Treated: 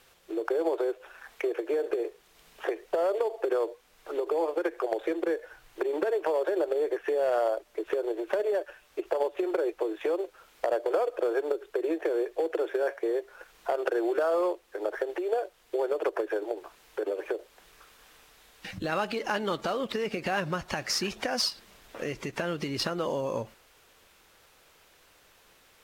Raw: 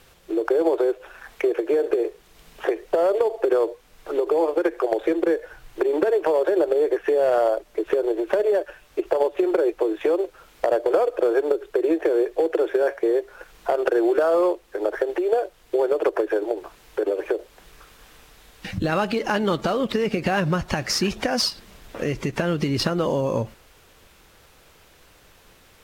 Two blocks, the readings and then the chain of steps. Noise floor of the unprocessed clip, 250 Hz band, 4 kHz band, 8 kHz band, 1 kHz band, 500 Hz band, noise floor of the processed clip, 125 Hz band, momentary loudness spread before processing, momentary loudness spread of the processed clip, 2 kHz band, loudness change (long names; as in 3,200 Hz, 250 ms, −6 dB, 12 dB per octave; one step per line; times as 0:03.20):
−54 dBFS, −9.5 dB, −5.0 dB, can't be measured, −6.0 dB, −7.5 dB, −61 dBFS, −12.5 dB, 8 LU, 9 LU, −5.5 dB, −7.5 dB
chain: low-shelf EQ 270 Hz −10 dB
level −5 dB